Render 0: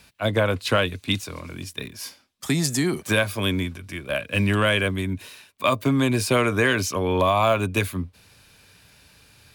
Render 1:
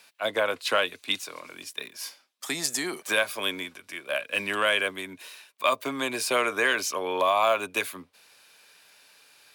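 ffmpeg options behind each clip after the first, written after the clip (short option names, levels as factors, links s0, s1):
-af "highpass=510,volume=0.841"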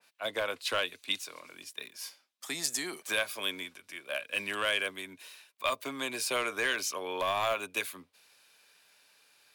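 -filter_complex "[0:a]acrossover=split=2600[s0][s1];[s0]aeval=exprs='clip(val(0),-1,0.106)':c=same[s2];[s2][s1]amix=inputs=2:normalize=0,adynamicequalizer=threshold=0.0126:dfrequency=2000:dqfactor=0.7:tfrequency=2000:tqfactor=0.7:attack=5:release=100:ratio=0.375:range=2:mode=boostabove:tftype=highshelf,volume=0.422"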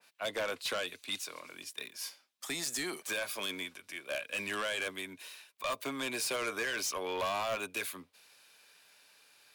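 -af "alimiter=limit=0.075:level=0:latency=1:release=12,aeval=exprs='0.075*sin(PI/2*1.58*val(0)/0.075)':c=same,volume=0.473"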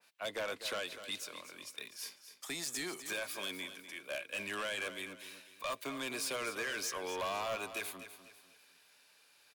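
-af "aecho=1:1:249|498|747|996:0.266|0.0958|0.0345|0.0124,volume=0.668"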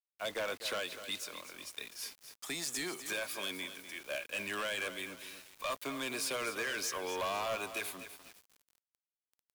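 -af "acrusher=bits=8:mix=0:aa=0.000001,volume=1.19"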